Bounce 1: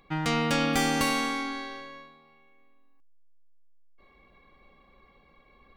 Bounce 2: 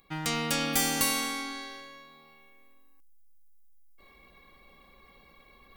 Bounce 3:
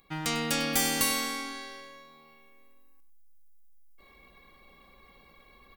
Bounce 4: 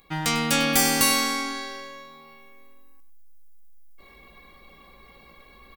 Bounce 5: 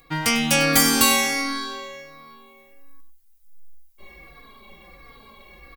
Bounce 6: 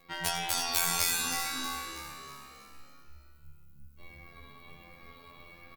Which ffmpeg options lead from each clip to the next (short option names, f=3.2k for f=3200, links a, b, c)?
-af "aemphasis=mode=production:type=75fm,areverse,acompressor=mode=upward:threshold=-43dB:ratio=2.5,areverse,volume=-5dB"
-af "aecho=1:1:99:0.211"
-filter_complex "[0:a]asplit=2[a][b];[b]adelay=18,volume=-8dB[c];[a][c]amix=inputs=2:normalize=0,volume=5.5dB"
-filter_complex "[0:a]asplit=2[a][b];[b]adelay=3.7,afreqshift=-1.4[c];[a][c]amix=inputs=2:normalize=1,volume=6.5dB"
-filter_complex "[0:a]afftfilt=real='re*lt(hypot(re,im),0.224)':imag='im*lt(hypot(re,im),0.224)':win_size=1024:overlap=0.75,afftfilt=real='hypot(re,im)*cos(PI*b)':imag='0':win_size=2048:overlap=0.75,asplit=2[a][b];[b]asplit=5[c][d][e][f][g];[c]adelay=320,afreqshift=70,volume=-9dB[h];[d]adelay=640,afreqshift=140,volume=-15.4dB[i];[e]adelay=960,afreqshift=210,volume=-21.8dB[j];[f]adelay=1280,afreqshift=280,volume=-28.1dB[k];[g]adelay=1600,afreqshift=350,volume=-34.5dB[l];[h][i][j][k][l]amix=inputs=5:normalize=0[m];[a][m]amix=inputs=2:normalize=0,volume=-2dB"